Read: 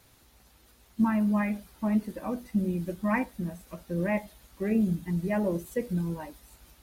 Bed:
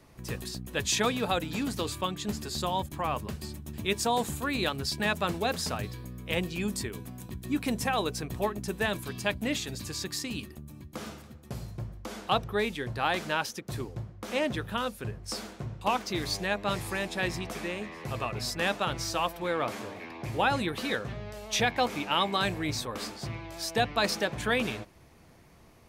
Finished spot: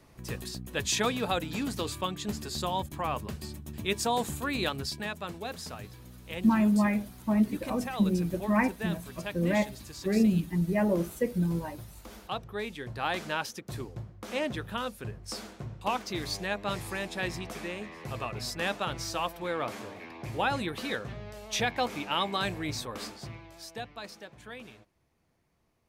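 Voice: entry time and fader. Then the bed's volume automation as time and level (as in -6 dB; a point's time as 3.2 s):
5.45 s, +1.5 dB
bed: 4.79 s -1 dB
5.12 s -8.5 dB
12.38 s -8.5 dB
13.12 s -2.5 dB
23.06 s -2.5 dB
24.12 s -17 dB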